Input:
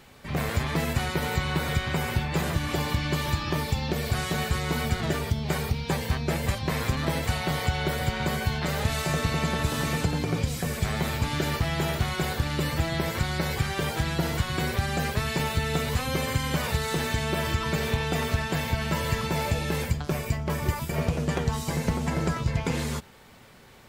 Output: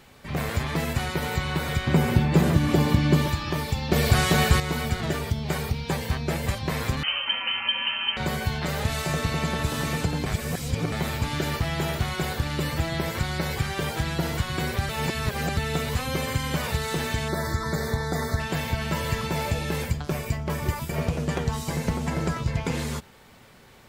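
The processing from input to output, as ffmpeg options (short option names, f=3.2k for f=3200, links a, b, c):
-filter_complex "[0:a]asettb=1/sr,asplit=3[a][b][c];[a]atrim=end=1.874[d];[b]atrim=start=1.87:end=3.28,asetpts=PTS-STARTPTS,afade=t=in:d=0.004:c=qsin,afade=t=out:st=1.406:d=0.004:c=qsin,equalizer=f=230:w=0.53:g=11[e];[c]atrim=start=3.276[f];[d][e]acrossfade=d=0.004:c1=hsin:c2=qsin[g];[g][f]acrossfade=d=0.004:c1=qsin:c2=hsin,asettb=1/sr,asplit=3[h][i][j];[h]atrim=end=7.034[k];[i]atrim=start=7.03:end=8.17,asetpts=PTS-STARTPTS,afade=t=in:d=0.004:c=qsin,afade=t=out:st=1.136:d=0.004:c=qsin,lowpass=f=2.7k:t=q:w=0.5098,lowpass=f=2.7k:t=q:w=0.6013,lowpass=f=2.7k:t=q:w=0.9,lowpass=f=2.7k:t=q:w=2.563,afreqshift=-3200[l];[j]atrim=start=8.166[m];[k][l]acrossfade=d=0.004:c1=hsin:c2=qsin[n];[n][m]acrossfade=d=0.004:c1=qsin:c2=hsin,asettb=1/sr,asplit=3[o][p][q];[o]atrim=end=17.284[r];[p]atrim=start=17.28:end=18.4,asetpts=PTS-STARTPTS,afade=t=in:d=0.004:c=qsin,afade=t=out:st=1.116:d=0.004:c=qsin,asuperstop=centerf=2800:order=8:qfactor=1.8[s];[q]atrim=start=18.396[t];[r][s]acrossfade=d=0.004:c1=hsin:c2=qsin[u];[u][t]acrossfade=d=0.004:c1=qsin:c2=hsin,asplit=7[v][w][x][y][z][aa][ab];[v]atrim=end=3.922[ac];[w]atrim=start=3.918:end=4.602,asetpts=PTS-STARTPTS,volume=7.5dB[ad];[x]atrim=start=4.598:end=10.262[ae];[y]atrim=start=10.258:end=10.922,asetpts=PTS-STARTPTS,areverse[af];[z]atrim=start=10.918:end=14.892[ag];[aa]atrim=start=14.888:end=15.572,asetpts=PTS-STARTPTS,areverse[ah];[ab]atrim=start=15.568[ai];[ac][ad]acrossfade=d=0.004:c1=hsin:c2=hsin[aj];[aj][ae]acrossfade=d=0.004:c1=hsin:c2=hsin[ak];[ak][af]acrossfade=d=0.004:c1=hsin:c2=hsin[al];[al][ag]acrossfade=d=0.004:c1=hsin:c2=hsin[am];[am][ah]acrossfade=d=0.004:c1=hsin:c2=hsin[an];[an][ai]acrossfade=d=0.004:c1=hsin:c2=hsin"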